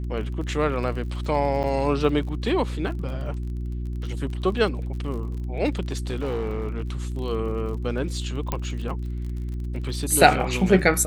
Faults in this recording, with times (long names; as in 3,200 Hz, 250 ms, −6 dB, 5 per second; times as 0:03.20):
surface crackle 37 per second −34 dBFS
mains hum 60 Hz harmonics 6 −29 dBFS
0:01.63–0:01.64: drop-out 7.4 ms
0:05.88–0:06.90: clipping −22.5 dBFS
0:08.52: click −11 dBFS